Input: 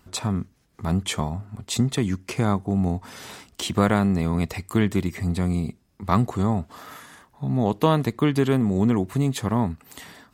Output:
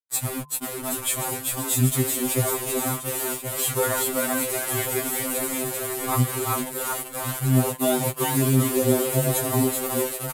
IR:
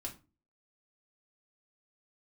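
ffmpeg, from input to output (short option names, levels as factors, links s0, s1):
-filter_complex "[0:a]asplit=2[s0][s1];[s1]asplit=6[s2][s3][s4][s5][s6][s7];[s2]adelay=386,afreqshift=120,volume=0.668[s8];[s3]adelay=772,afreqshift=240,volume=0.309[s9];[s4]adelay=1158,afreqshift=360,volume=0.141[s10];[s5]adelay=1544,afreqshift=480,volume=0.0653[s11];[s6]adelay=1930,afreqshift=600,volume=0.0299[s12];[s7]adelay=2316,afreqshift=720,volume=0.0138[s13];[s8][s9][s10][s11][s12][s13]amix=inputs=6:normalize=0[s14];[s0][s14]amix=inputs=2:normalize=0,adynamicequalizer=threshold=0.0178:dfrequency=190:dqfactor=1.6:tfrequency=190:tqfactor=1.6:attack=5:release=100:ratio=0.375:range=4:mode=cutabove:tftype=bell,acrusher=bits=4:mix=0:aa=0.000001,aexciter=amount=6.7:drive=6.4:freq=7800,aresample=32000,aresample=44100,highshelf=f=11000:g=-7.5,bandreject=f=147.5:t=h:w=4,bandreject=f=295:t=h:w=4,bandreject=f=442.5:t=h:w=4,bandreject=f=590:t=h:w=4,bandreject=f=737.5:t=h:w=4,bandreject=f=885:t=h:w=4,bandreject=f=1032.5:t=h:w=4,bandreject=f=1180:t=h:w=4,bandreject=f=1327.5:t=h:w=4,bandreject=f=1475:t=h:w=4,bandreject=f=1622.5:t=h:w=4,asplit=2[s15][s16];[s16]aecho=0:1:1076:0.266[s17];[s15][s17]amix=inputs=2:normalize=0,afftfilt=real='re*2.45*eq(mod(b,6),0)':imag='im*2.45*eq(mod(b,6),0)':win_size=2048:overlap=0.75"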